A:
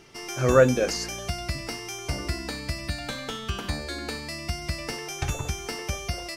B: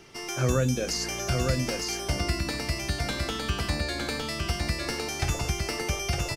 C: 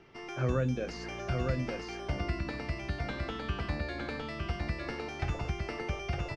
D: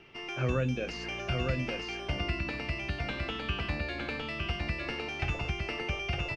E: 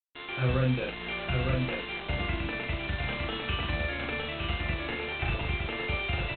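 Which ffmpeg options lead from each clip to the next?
-filter_complex "[0:a]acrossover=split=230|3000[s0][s1][s2];[s1]acompressor=threshold=0.0355:ratio=6[s3];[s0][s3][s2]amix=inputs=3:normalize=0,asplit=2[s4][s5];[s5]aecho=0:1:909:0.668[s6];[s4][s6]amix=inputs=2:normalize=0,volume=1.12"
-af "lowpass=2500,volume=0.562"
-af "equalizer=f=2700:t=o:w=0.52:g=11.5"
-filter_complex "[0:a]aresample=8000,acrusher=bits=5:mix=0:aa=0.5,aresample=44100,asplit=2[s0][s1];[s1]adelay=39,volume=0.75[s2];[s0][s2]amix=inputs=2:normalize=0"

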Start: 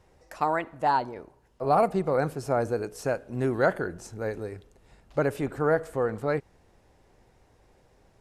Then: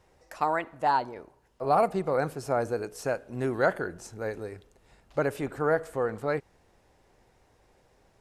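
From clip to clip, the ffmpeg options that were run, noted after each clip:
-af "lowshelf=f=380:g=-4.5"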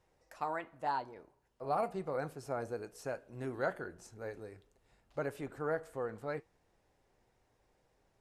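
-af "flanger=delay=6:depth=2.7:regen=-74:speed=0.89:shape=triangular,volume=0.501"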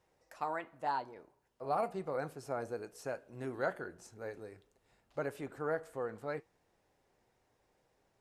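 -af "lowshelf=f=73:g=-9.5"

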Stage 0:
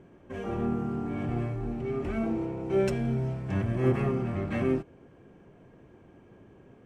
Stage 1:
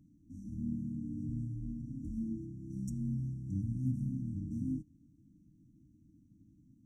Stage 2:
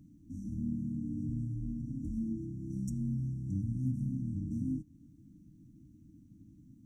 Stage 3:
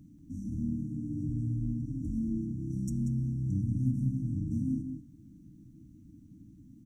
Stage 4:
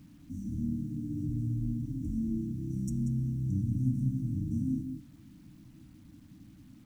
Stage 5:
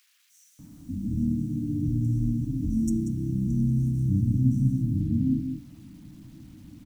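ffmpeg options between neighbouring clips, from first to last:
-af "afftfilt=real='re*(1-between(b*sr/4096,330,5500))':imag='im*(1-between(b*sr/4096,330,5500))':win_size=4096:overlap=0.75,volume=0.473"
-af "acompressor=threshold=0.00562:ratio=1.5,volume=2"
-filter_complex "[0:a]asplit=2[s0][s1];[s1]adelay=186.6,volume=0.447,highshelf=f=4000:g=-4.2[s2];[s0][s2]amix=inputs=2:normalize=0,volume=1.41"
-af "acrusher=bits=10:mix=0:aa=0.000001"
-filter_complex "[0:a]acrossover=split=1500[s0][s1];[s0]adelay=590[s2];[s2][s1]amix=inputs=2:normalize=0,volume=2.24"

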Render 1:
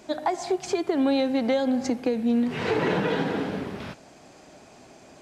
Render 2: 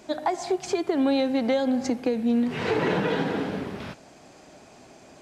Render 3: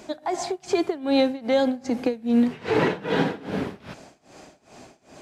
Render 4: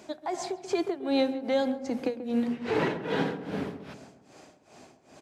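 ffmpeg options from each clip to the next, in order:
-af anull
-af "tremolo=f=2.5:d=0.92,volume=1.78"
-filter_complex "[0:a]highpass=64,bandreject=f=60:t=h:w=6,bandreject=f=120:t=h:w=6,bandreject=f=180:t=h:w=6,bandreject=f=240:t=h:w=6,asplit=2[s0][s1];[s1]adelay=136,lowpass=f=970:p=1,volume=0.316,asplit=2[s2][s3];[s3]adelay=136,lowpass=f=970:p=1,volume=0.52,asplit=2[s4][s5];[s5]adelay=136,lowpass=f=970:p=1,volume=0.52,asplit=2[s6][s7];[s7]adelay=136,lowpass=f=970:p=1,volume=0.52,asplit=2[s8][s9];[s9]adelay=136,lowpass=f=970:p=1,volume=0.52,asplit=2[s10][s11];[s11]adelay=136,lowpass=f=970:p=1,volume=0.52[s12];[s0][s2][s4][s6][s8][s10][s12]amix=inputs=7:normalize=0,volume=0.531"

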